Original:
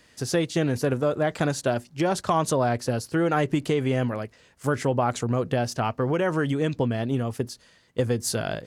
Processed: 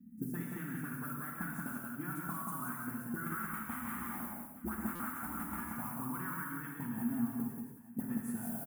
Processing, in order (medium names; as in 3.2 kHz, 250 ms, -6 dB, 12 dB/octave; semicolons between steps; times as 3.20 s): 3.26–5.75 s: cycle switcher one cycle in 2, inverted; auto-wah 220–1300 Hz, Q 6.6, up, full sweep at -20 dBFS; modulation noise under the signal 32 dB; high-order bell 650 Hz -10.5 dB 2.5 oct; compression, threshold -45 dBFS, peak gain reduction 9 dB; FFT filter 120 Hz 0 dB, 230 Hz +9 dB, 340 Hz -1 dB, 530 Hz -24 dB, 890 Hz -9 dB, 1.5 kHz -8 dB, 4.6 kHz -25 dB, 11 kHz +14 dB; multi-tap echo 47/180/862 ms -12/-4.5/-17.5 dB; gated-style reverb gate 210 ms flat, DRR -1 dB; buffer glitch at 4.95 s, samples 256, times 7; trim +11 dB